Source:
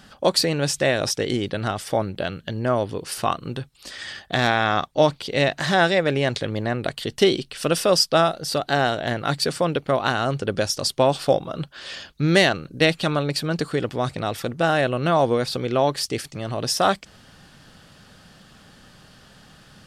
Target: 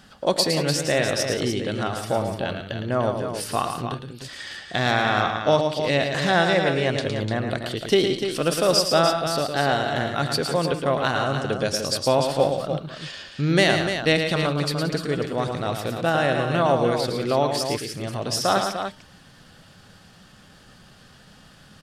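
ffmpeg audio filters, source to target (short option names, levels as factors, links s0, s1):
-filter_complex "[0:a]bandreject=f=301.7:t=h:w=4,bandreject=f=603.4:t=h:w=4,bandreject=f=905.1:t=h:w=4,bandreject=f=1206.8:t=h:w=4,bandreject=f=1508.5:t=h:w=4,bandreject=f=1810.2:t=h:w=4,bandreject=f=2111.9:t=h:w=4,bandreject=f=2413.6:t=h:w=4,bandreject=f=2715.3:t=h:w=4,bandreject=f=3017:t=h:w=4,bandreject=f=3318.7:t=h:w=4,bandreject=f=3620.4:t=h:w=4,bandreject=f=3922.1:t=h:w=4,bandreject=f=4223.8:t=h:w=4,bandreject=f=4525.5:t=h:w=4,bandreject=f=4827.2:t=h:w=4,bandreject=f=5128.9:t=h:w=4,bandreject=f=5430.6:t=h:w=4,bandreject=f=5732.3:t=h:w=4,bandreject=f=6034:t=h:w=4,bandreject=f=6335.7:t=h:w=4,bandreject=f=6637.4:t=h:w=4,atempo=0.91,asplit=2[s0][s1];[s1]aecho=0:1:111|176|297:0.473|0.188|0.398[s2];[s0][s2]amix=inputs=2:normalize=0,volume=0.794"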